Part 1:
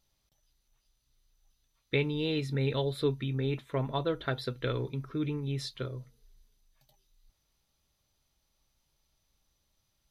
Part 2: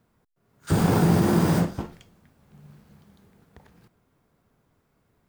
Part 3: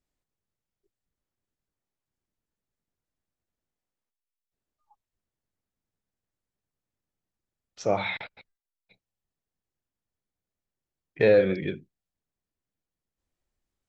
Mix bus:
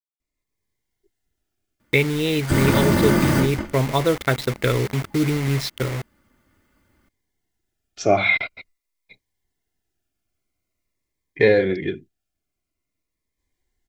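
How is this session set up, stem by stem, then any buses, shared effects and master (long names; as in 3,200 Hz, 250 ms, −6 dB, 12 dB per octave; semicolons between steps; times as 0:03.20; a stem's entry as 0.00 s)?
−0.5 dB, 0.00 s, no send, adaptive Wiener filter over 15 samples; bit reduction 7 bits
−7.5 dB, 1.80 s, no send, lower of the sound and its delayed copy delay 0.63 ms; comb filter 3.4 ms
−4.0 dB, 0.20 s, no send, comb filter 2.9 ms, depth 38%; speech leveller; phaser whose notches keep moving one way falling 0.47 Hz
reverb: not used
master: parametric band 2,100 Hz +8.5 dB 0.24 octaves; automatic gain control gain up to 12.5 dB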